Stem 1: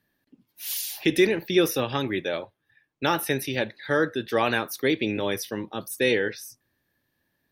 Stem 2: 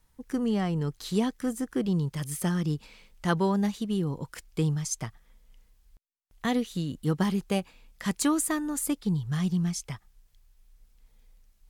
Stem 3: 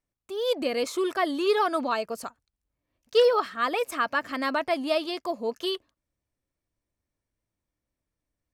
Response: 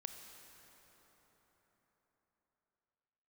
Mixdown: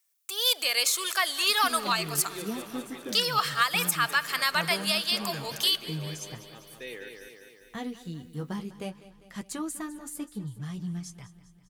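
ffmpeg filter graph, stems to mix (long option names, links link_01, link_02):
-filter_complex "[0:a]highpass=frequency=440:poles=1,adelay=800,volume=-16.5dB,asplit=2[link_01][link_02];[link_02]volume=-5.5dB[link_03];[1:a]flanger=delay=8:depth=6.7:regen=-35:speed=0.49:shape=triangular,adelay=1300,volume=-5dB,asplit=2[link_04][link_05];[link_05]volume=-16.5dB[link_06];[2:a]highpass=1100,crystalizer=i=5:c=0,volume=1.5dB,asplit=3[link_07][link_08][link_09];[link_08]volume=-8.5dB[link_10];[link_09]volume=-18dB[link_11];[3:a]atrim=start_sample=2205[link_12];[link_10][link_12]afir=irnorm=-1:irlink=0[link_13];[link_03][link_06][link_11]amix=inputs=3:normalize=0,aecho=0:1:200|400|600|800|1000|1200|1400|1600|1800:1|0.59|0.348|0.205|0.121|0.0715|0.0422|0.0249|0.0147[link_14];[link_01][link_04][link_07][link_13][link_14]amix=inputs=5:normalize=0,alimiter=limit=-12.5dB:level=0:latency=1:release=387"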